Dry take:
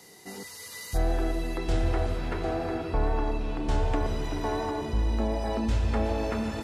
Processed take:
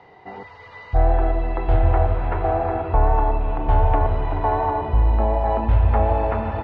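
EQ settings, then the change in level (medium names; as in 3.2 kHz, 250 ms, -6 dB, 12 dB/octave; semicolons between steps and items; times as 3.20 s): low-pass 2.9 kHz 24 dB/octave; resonant low shelf 140 Hz +8.5 dB, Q 1.5; peaking EQ 820 Hz +13.5 dB 1.4 oct; 0.0 dB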